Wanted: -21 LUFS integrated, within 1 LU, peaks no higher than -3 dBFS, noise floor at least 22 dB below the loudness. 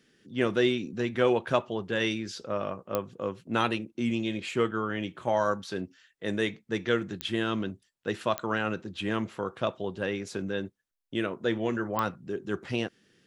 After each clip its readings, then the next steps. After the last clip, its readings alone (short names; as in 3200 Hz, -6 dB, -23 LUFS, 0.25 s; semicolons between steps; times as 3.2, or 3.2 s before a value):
clicks 4; loudness -30.5 LUFS; peak -10.0 dBFS; loudness target -21.0 LUFS
-> de-click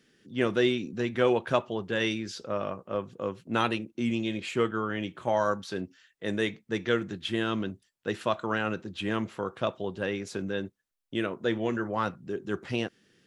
clicks 0; loudness -30.5 LUFS; peak -10.0 dBFS; loudness target -21.0 LUFS
-> gain +9.5 dB; limiter -3 dBFS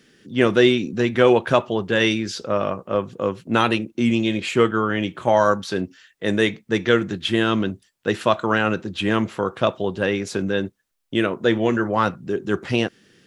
loudness -21.5 LUFS; peak -3.0 dBFS; noise floor -66 dBFS